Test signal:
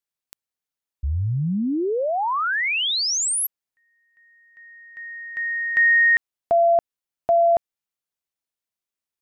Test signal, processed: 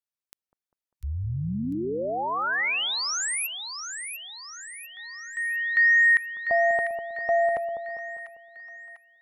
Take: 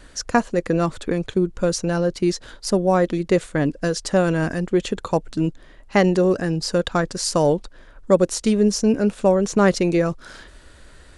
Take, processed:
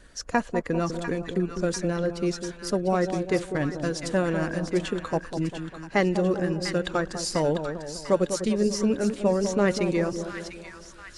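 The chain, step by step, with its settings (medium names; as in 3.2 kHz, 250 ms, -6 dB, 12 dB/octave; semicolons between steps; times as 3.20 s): coarse spectral quantiser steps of 15 dB; dynamic bell 2 kHz, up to +4 dB, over -35 dBFS, Q 1; on a send: two-band feedback delay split 1.1 kHz, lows 199 ms, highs 697 ms, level -8 dB; on the sum: trim -6.5 dB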